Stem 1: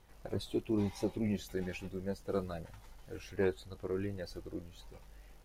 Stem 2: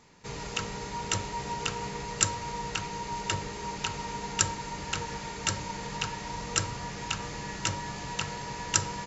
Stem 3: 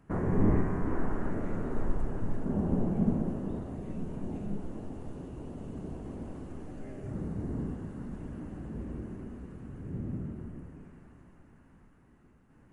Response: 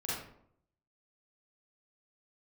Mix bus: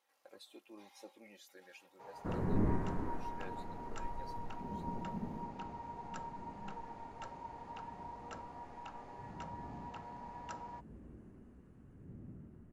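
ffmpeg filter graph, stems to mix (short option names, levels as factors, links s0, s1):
-filter_complex "[0:a]highpass=630,aecho=1:1:3.7:0.53,volume=0.266[s0];[1:a]bandpass=f=770:t=q:w=3.2:csg=0,adelay=1750,volume=0.596[s1];[2:a]adelay=2150,volume=0.447,afade=t=out:st=2.97:d=0.25:silence=0.398107[s2];[s0][s1][s2]amix=inputs=3:normalize=0"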